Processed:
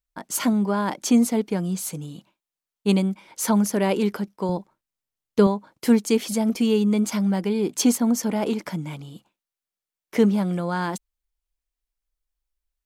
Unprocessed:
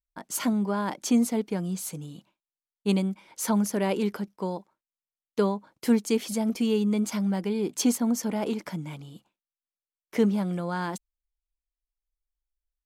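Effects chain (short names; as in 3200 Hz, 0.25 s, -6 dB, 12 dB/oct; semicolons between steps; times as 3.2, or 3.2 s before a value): 4.49–5.47 low shelf 180 Hz +11.5 dB; gain +4.5 dB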